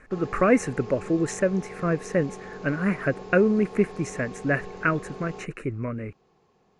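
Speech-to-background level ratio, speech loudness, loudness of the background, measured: 14.5 dB, −26.0 LKFS, −40.5 LKFS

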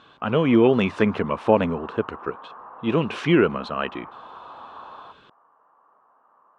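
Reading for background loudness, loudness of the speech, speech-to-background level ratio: −41.5 LKFS, −22.0 LKFS, 19.5 dB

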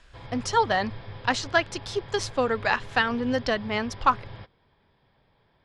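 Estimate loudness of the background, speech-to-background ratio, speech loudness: −42.0 LKFS, 15.5 dB, −26.5 LKFS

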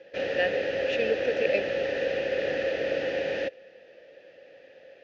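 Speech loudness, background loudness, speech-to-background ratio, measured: −30.5 LKFS, −29.0 LKFS, −1.5 dB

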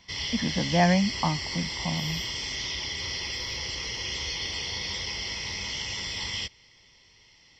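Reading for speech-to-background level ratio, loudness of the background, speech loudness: 3.0 dB, −30.5 LKFS, −27.5 LKFS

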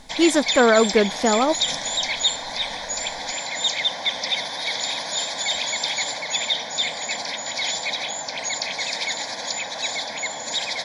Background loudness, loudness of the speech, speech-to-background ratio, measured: −24.0 LKFS, −19.0 LKFS, 5.0 dB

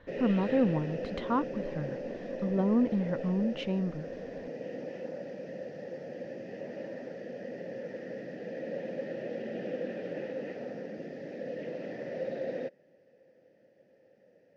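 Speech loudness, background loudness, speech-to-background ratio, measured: −31.0 LKFS, −39.0 LKFS, 8.0 dB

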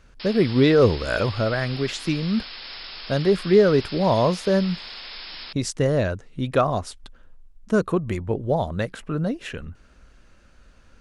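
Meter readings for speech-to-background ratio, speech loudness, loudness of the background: 13.0 dB, −22.5 LKFS, −35.5 LKFS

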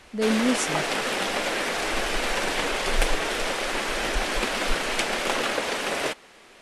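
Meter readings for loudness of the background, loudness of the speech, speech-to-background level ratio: −26.0 LKFS, −26.0 LKFS, 0.0 dB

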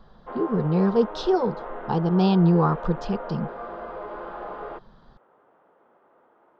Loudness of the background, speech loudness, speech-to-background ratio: −36.0 LKFS, −23.0 LKFS, 13.0 dB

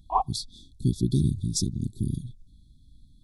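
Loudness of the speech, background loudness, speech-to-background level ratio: −28.5 LKFS, −30.0 LKFS, 1.5 dB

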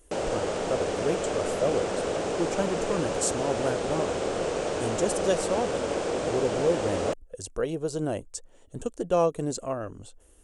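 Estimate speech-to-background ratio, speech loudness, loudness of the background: −1.5 dB, −31.0 LKFS, −29.5 LKFS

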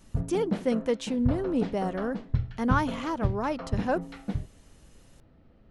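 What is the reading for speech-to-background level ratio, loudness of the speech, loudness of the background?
4.0 dB, −30.0 LKFS, −34.0 LKFS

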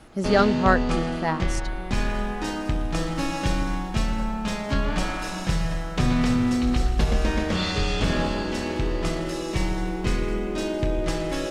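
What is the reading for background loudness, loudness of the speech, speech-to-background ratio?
−26.0 LKFS, −24.0 LKFS, 2.0 dB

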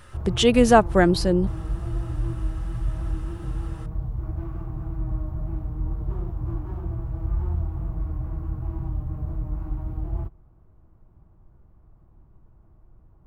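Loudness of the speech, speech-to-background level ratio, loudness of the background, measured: −19.5 LKFS, 11.5 dB, −31.0 LKFS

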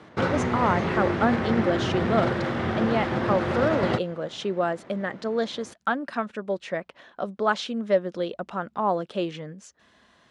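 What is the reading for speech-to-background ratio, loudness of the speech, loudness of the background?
−1.5 dB, −28.0 LKFS, −26.5 LKFS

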